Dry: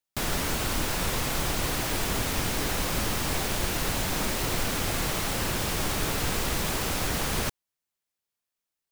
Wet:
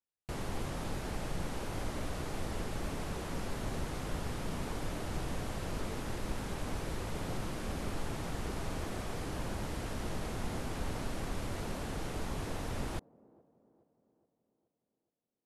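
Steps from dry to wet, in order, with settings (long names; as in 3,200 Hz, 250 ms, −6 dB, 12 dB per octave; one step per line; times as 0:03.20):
high-shelf EQ 2,400 Hz −11 dB
delay with a band-pass on its return 243 ms, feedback 51%, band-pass 610 Hz, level −21 dB
wrong playback speed 78 rpm record played at 45 rpm
level −7 dB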